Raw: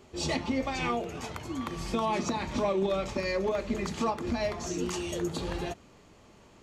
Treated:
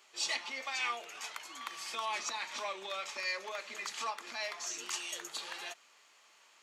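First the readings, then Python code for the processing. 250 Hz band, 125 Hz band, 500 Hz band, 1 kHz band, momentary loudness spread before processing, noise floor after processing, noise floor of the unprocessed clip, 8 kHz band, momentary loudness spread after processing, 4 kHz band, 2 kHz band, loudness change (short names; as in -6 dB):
-27.0 dB, under -35 dB, -16.0 dB, -6.5 dB, 7 LU, -64 dBFS, -57 dBFS, +1.0 dB, 8 LU, +1.0 dB, 0.0 dB, -6.5 dB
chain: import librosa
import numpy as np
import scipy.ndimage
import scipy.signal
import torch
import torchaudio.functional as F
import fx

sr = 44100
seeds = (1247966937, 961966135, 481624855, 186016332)

y = scipy.signal.sosfilt(scipy.signal.butter(2, 1400.0, 'highpass', fs=sr, output='sos'), x)
y = y * librosa.db_to_amplitude(1.0)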